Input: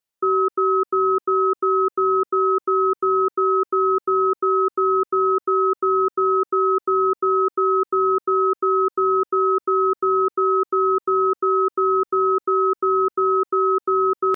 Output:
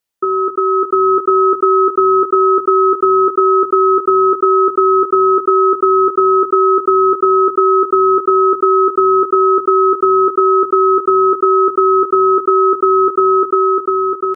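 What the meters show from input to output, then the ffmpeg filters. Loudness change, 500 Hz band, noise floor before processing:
+7.5 dB, +8.0 dB, under -85 dBFS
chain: -filter_complex "[0:a]dynaudnorm=f=180:g=9:m=5dB,asplit=2[a][b];[b]aecho=0:1:20|74:0.376|0.168[c];[a][c]amix=inputs=2:normalize=0,volume=5dB"

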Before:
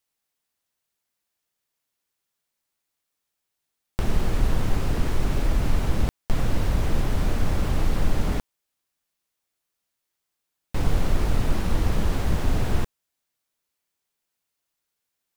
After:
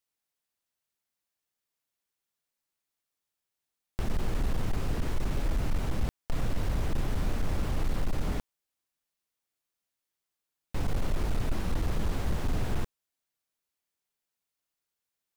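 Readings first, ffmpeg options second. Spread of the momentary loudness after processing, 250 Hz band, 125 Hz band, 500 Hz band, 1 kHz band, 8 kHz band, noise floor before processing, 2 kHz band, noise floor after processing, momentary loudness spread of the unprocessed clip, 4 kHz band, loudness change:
4 LU, -6.5 dB, -7.0 dB, -6.5 dB, -6.5 dB, -6.5 dB, -82 dBFS, -6.5 dB, under -85 dBFS, 4 LU, -6.5 dB, -7.0 dB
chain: -af "volume=15.5dB,asoftclip=hard,volume=-15.5dB,volume=-6dB"

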